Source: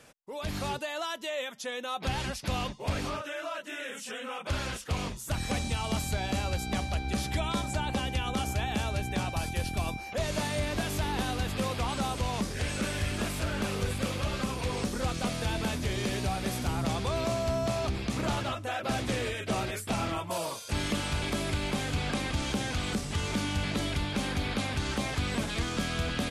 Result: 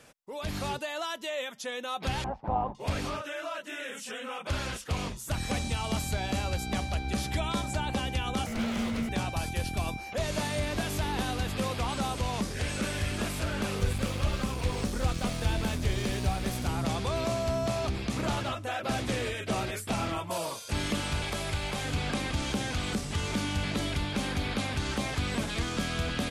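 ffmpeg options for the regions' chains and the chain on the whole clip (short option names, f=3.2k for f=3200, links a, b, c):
-filter_complex "[0:a]asettb=1/sr,asplit=3[a][b][c];[a]atrim=end=2.244[d];[b]atrim=start=2.24:end=2.75,asetpts=PTS-STARTPTS,afade=t=in:d=0.004:c=qsin,afade=t=out:st=0.506:d=0.004:c=qsin,lowpass=f=840:t=q:w=5.4,tremolo=f=110:d=0.519[e];[c]atrim=start=2.746[f];[d][e]acrossfade=d=0.004:c1=hsin:c2=qsin[g];[g][f]acrossfade=d=0.004:c1=qsin:c2=hsin,asettb=1/sr,asplit=3[h][i][j];[h]atrim=end=8.464[k];[i]atrim=start=8.46:end=9.09,asetpts=PTS-STARTPTS,afade=t=in:d=0.004:c=qsin,afade=t=out:st=0.626:d=0.004:c=qsin,acrossover=split=5400[l][m];[m]acompressor=threshold=-48dB:ratio=4:attack=1:release=60[n];[l][n]amix=inputs=2:normalize=0,aeval=exprs='abs(val(0))':c=same,afreqshift=-230[o];[j]atrim=start=9.086[p];[k][o]acrossfade=d=0.004:c1=hsin:c2=qsin[q];[q][p]acrossfade=d=0.004:c1=qsin:c2=hsin,asettb=1/sr,asplit=3[r][s][t];[r]atrim=end=13.794[u];[s]atrim=start=13.79:end=16.65,asetpts=PTS-STARTPTS,afade=t=in:d=0.004:c=qsin,afade=t=out:st=2.856:d=0.004:c=qsin,lowshelf=f=69:g=11.5,aeval=exprs='sgn(val(0))*max(abs(val(0))-0.00631,0)':c=same[v];[t]atrim=start=16.646[w];[u][v]acrossfade=d=0.004:c1=hsin:c2=qsin[x];[x][w]acrossfade=d=0.004:c1=qsin:c2=hsin,asettb=1/sr,asplit=3[y][z][aa];[y]atrim=end=21.224[ab];[z]atrim=start=21.22:end=21.85,asetpts=PTS-STARTPTS,afade=t=in:d=0.004:c=qsin,afade=t=out:st=0.626:d=0.004:c=qsin,equalizer=f=260:t=o:w=0.77:g=-11.5,aeval=exprs='val(0)+0.00398*sin(2*PI*800*n/s)':c=same[ac];[aa]atrim=start=21.846[ad];[ab][ac]acrossfade=d=0.004:c1=hsin:c2=qsin[ae];[ae][ad]acrossfade=d=0.004:c1=qsin:c2=hsin"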